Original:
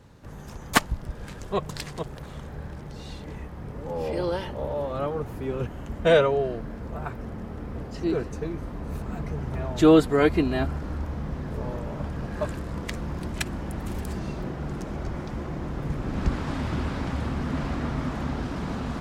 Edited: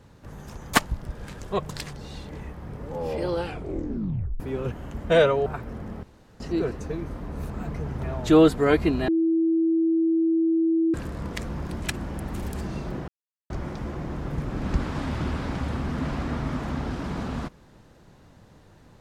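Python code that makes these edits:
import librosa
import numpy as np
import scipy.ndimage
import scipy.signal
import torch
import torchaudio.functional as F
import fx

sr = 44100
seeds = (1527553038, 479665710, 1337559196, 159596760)

y = fx.edit(x, sr, fx.cut(start_s=1.93, length_s=0.95),
    fx.tape_stop(start_s=4.3, length_s=1.05),
    fx.cut(start_s=6.41, length_s=0.57),
    fx.room_tone_fill(start_s=7.55, length_s=0.37),
    fx.bleep(start_s=10.6, length_s=1.86, hz=327.0, db=-18.5),
    fx.silence(start_s=14.6, length_s=0.42), tone=tone)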